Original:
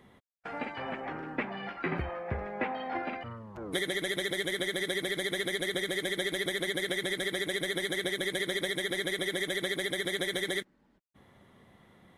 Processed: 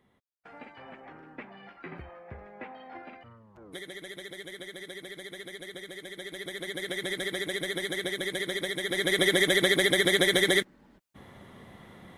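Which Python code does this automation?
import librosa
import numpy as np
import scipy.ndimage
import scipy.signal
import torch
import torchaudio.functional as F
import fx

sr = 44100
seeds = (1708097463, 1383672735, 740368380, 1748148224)

y = fx.gain(x, sr, db=fx.line((6.1, -10.0), (7.1, 0.0), (8.81, 0.0), (9.22, 9.0)))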